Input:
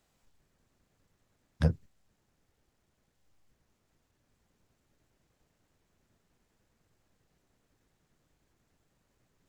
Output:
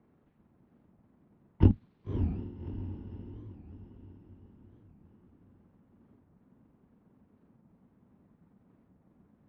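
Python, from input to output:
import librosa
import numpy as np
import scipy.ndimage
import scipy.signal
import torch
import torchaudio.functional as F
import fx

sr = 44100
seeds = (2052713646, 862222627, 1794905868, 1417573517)

p1 = fx.pitch_heads(x, sr, semitones=-10.0)
p2 = fx.env_lowpass(p1, sr, base_hz=1300.0, full_db=-47.5)
p3 = fx.highpass(p2, sr, hz=100.0, slope=6)
p4 = fx.peak_eq(p3, sr, hz=210.0, db=14.0, octaves=1.5)
p5 = fx.schmitt(p4, sr, flips_db=-23.0)
p6 = p4 + (p5 * 10.0 ** (-3.0 / 20.0))
p7 = fx.air_absorb(p6, sr, metres=300.0)
p8 = fx.echo_diffused(p7, sr, ms=601, feedback_pct=49, wet_db=-7)
p9 = fx.record_warp(p8, sr, rpm=45.0, depth_cents=250.0)
y = p9 * 10.0 ** (6.5 / 20.0)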